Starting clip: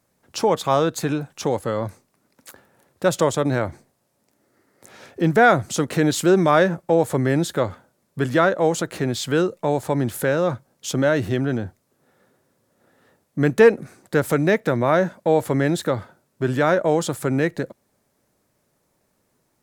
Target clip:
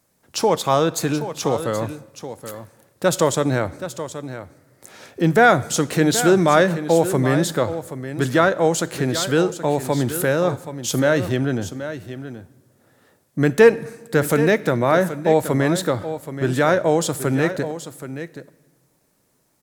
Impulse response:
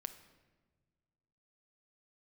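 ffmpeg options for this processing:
-filter_complex "[0:a]aecho=1:1:776:0.266,asplit=2[a][b];[1:a]atrim=start_sample=2205,highshelf=f=3k:g=11[c];[b][c]afir=irnorm=-1:irlink=0,volume=-3dB[d];[a][d]amix=inputs=2:normalize=0,volume=-2.5dB"

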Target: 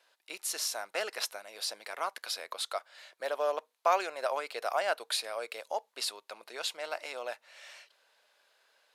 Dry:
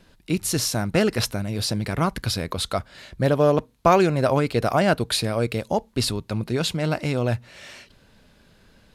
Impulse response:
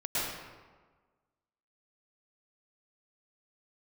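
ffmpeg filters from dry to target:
-af "highpass=f=580:w=0.5412,highpass=f=580:w=1.3066,volume=-8dB"

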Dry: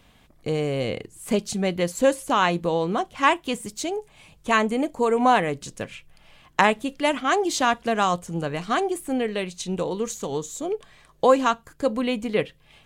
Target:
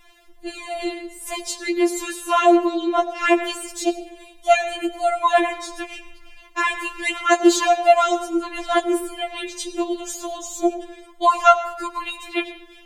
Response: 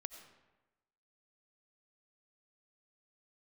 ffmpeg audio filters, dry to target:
-filter_complex "[0:a]asplit=3[a][b][c];[a]afade=t=out:st=2.63:d=0.02[d];[b]asplit=2[e][f];[f]highpass=f=720:p=1,volume=7dB,asoftclip=type=tanh:threshold=-8.5dB[g];[e][g]amix=inputs=2:normalize=0,lowpass=f=3.8k:p=1,volume=-6dB,afade=t=in:st=2.63:d=0.02,afade=t=out:st=3.24:d=0.02[h];[c]afade=t=in:st=3.24:d=0.02[i];[d][h][i]amix=inputs=3:normalize=0,asplit=2[j][k];[1:a]atrim=start_sample=2205[l];[k][l]afir=irnorm=-1:irlink=0,volume=9dB[m];[j][m]amix=inputs=2:normalize=0,alimiter=level_in=-1.5dB:limit=-1dB:release=50:level=0:latency=1,afftfilt=real='re*4*eq(mod(b,16),0)':imag='im*4*eq(mod(b,16),0)':win_size=2048:overlap=0.75,volume=-1dB"

